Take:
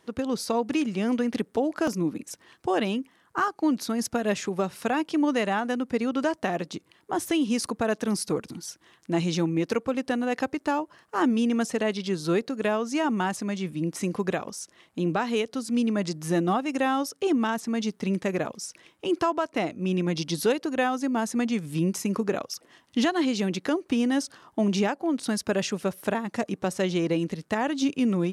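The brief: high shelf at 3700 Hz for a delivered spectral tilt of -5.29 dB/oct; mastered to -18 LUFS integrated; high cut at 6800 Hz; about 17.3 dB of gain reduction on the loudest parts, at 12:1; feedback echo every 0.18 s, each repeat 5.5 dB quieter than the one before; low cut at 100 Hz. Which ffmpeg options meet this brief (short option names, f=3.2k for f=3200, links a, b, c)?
-af "highpass=100,lowpass=6.8k,highshelf=f=3.7k:g=-4,acompressor=threshold=-38dB:ratio=12,aecho=1:1:180|360|540|720|900|1080|1260:0.531|0.281|0.149|0.079|0.0419|0.0222|0.0118,volume=23.5dB"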